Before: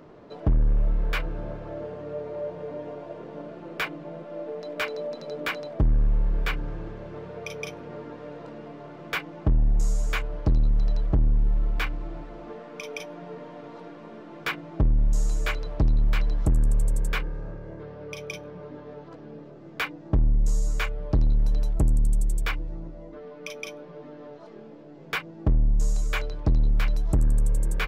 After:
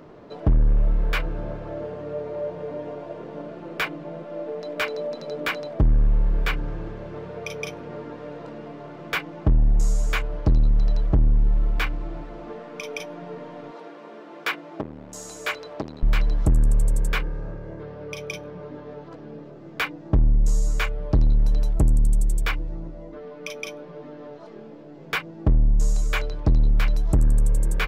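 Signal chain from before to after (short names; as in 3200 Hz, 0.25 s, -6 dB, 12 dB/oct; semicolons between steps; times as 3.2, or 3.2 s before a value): 13.71–16.03 HPF 320 Hz 12 dB/oct; gain +3 dB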